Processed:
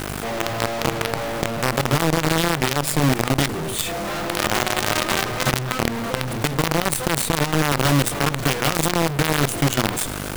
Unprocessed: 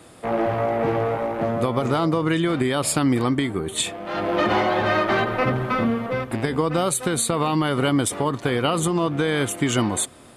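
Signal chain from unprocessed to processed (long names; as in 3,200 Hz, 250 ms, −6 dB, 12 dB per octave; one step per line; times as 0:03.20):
parametric band 140 Hz +12.5 dB 0.38 octaves
mains-hum notches 60/120/180/240/300/360/420/480/540/600 Hz
harmonic generator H 4 −37 dB, 7 −41 dB, 8 −21 dB, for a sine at −6 dBFS
hum with harmonics 50 Hz, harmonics 31, −41 dBFS −2 dB per octave
in parallel at −12 dB: wrap-around overflow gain 16.5 dB
on the sum: log-companded quantiser 2 bits
envelope flattener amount 50%
level −11.5 dB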